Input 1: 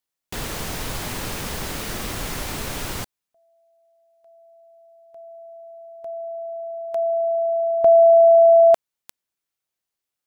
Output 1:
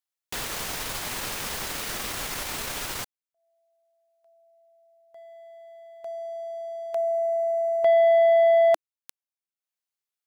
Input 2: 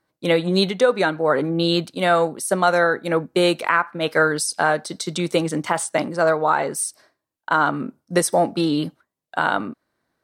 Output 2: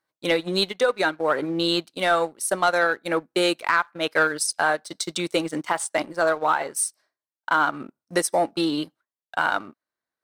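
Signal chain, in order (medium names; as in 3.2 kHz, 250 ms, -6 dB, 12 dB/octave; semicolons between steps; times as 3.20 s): dynamic bell 320 Hz, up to +5 dB, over -35 dBFS, Q 4.6; transient shaper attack +1 dB, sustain -8 dB; bass shelf 450 Hz -11.5 dB; waveshaping leveller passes 1; trim -3.5 dB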